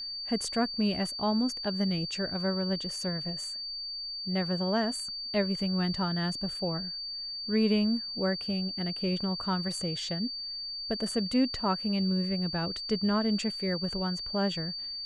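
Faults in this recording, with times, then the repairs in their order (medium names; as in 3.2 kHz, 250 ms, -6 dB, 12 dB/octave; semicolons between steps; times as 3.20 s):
whine 4.6 kHz -35 dBFS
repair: band-stop 4.6 kHz, Q 30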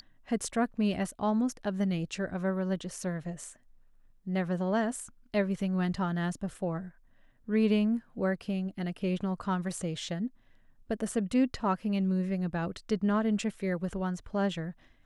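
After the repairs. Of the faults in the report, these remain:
nothing left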